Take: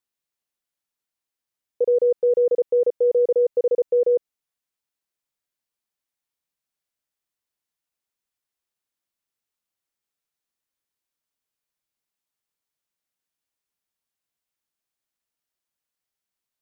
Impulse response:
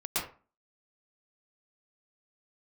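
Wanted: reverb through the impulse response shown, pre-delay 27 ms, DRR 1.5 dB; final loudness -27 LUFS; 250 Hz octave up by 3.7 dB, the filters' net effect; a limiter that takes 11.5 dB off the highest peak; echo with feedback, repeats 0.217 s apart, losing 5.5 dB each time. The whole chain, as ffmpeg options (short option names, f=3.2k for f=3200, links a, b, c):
-filter_complex "[0:a]equalizer=f=250:t=o:g=7.5,alimiter=limit=-23.5dB:level=0:latency=1,aecho=1:1:217|434|651|868|1085|1302|1519:0.531|0.281|0.149|0.079|0.0419|0.0222|0.0118,asplit=2[a][b];[1:a]atrim=start_sample=2205,adelay=27[c];[b][c]afir=irnorm=-1:irlink=0,volume=-8.5dB[d];[a][d]amix=inputs=2:normalize=0,volume=2dB"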